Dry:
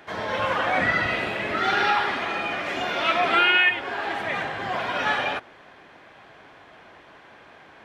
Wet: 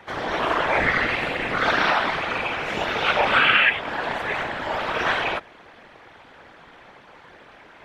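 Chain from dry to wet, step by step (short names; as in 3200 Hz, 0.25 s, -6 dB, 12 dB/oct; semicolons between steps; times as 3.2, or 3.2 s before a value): ring modulator 120 Hz; whisperiser; gain +4.5 dB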